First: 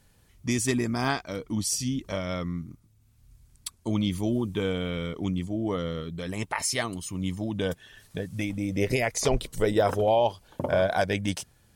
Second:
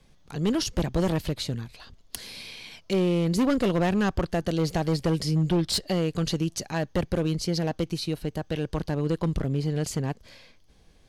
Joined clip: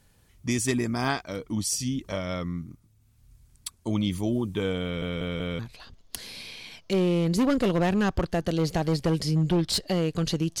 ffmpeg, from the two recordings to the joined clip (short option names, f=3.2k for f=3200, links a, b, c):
-filter_complex "[0:a]apad=whole_dur=10.6,atrim=end=10.6,asplit=4[a][b][c][d];[a]atrim=end=5.022[e];[b]atrim=start=4.828:end=5.022[f];[c]atrim=start=4.828:end=5.022[g];[d]atrim=start=4.828:end=5.022[h];[1:a]atrim=start=1.588:end=6.6[i];[e][f]acrossfade=d=0.004:c1=hsin:c2=hsin[j];[j][g]acrossfade=d=0.004:c1=hsin:c2=hsin[k];[k][h]acrossfade=d=0.004:c1=hsin:c2=hsin[l];[l][i]acrossfade=d=0.004:c1=hsin:c2=hsin"